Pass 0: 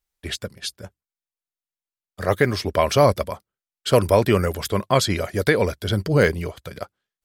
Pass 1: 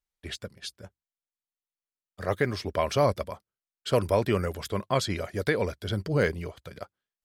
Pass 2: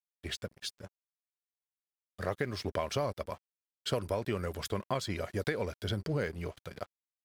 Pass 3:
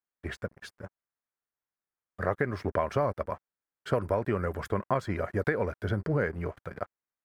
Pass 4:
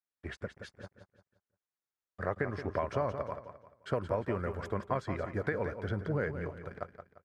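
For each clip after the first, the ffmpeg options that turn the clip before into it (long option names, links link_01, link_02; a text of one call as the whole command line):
ffmpeg -i in.wav -af "highshelf=frequency=10000:gain=-7.5,volume=-7.5dB" out.wav
ffmpeg -i in.wav -af "acompressor=threshold=-29dB:ratio=5,aeval=exprs='sgn(val(0))*max(abs(val(0))-0.00211,0)':channel_layout=same" out.wav
ffmpeg -i in.wav -af "highshelf=frequency=2400:width_type=q:width=1.5:gain=-13,volume=4.5dB" out.wav
ffmpeg -i in.wav -filter_complex "[0:a]lowpass=8000,asplit=2[link_01][link_02];[link_02]aecho=0:1:174|348|522|696:0.335|0.117|0.041|0.0144[link_03];[link_01][link_03]amix=inputs=2:normalize=0,volume=-5dB" out.wav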